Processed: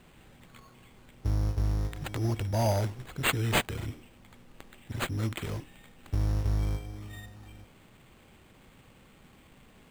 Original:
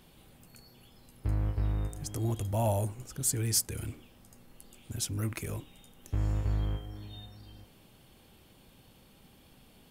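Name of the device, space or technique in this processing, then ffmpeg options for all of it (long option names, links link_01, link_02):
crushed at another speed: -af "asetrate=22050,aresample=44100,acrusher=samples=16:mix=1:aa=0.000001,asetrate=88200,aresample=44100,volume=2dB"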